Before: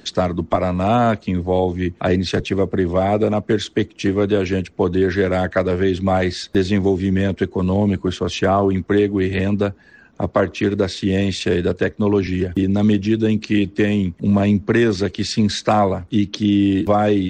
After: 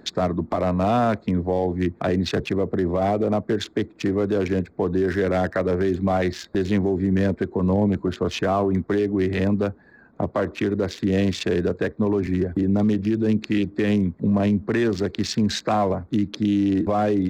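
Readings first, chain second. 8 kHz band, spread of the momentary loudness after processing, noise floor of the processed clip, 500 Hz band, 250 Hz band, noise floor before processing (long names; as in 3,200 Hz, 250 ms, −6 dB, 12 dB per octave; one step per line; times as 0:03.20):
−4.5 dB, 4 LU, −52 dBFS, −4.0 dB, −3.5 dB, −49 dBFS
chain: adaptive Wiener filter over 15 samples
low-shelf EQ 76 Hz −8 dB
brickwall limiter −13 dBFS, peak gain reduction 8.5 dB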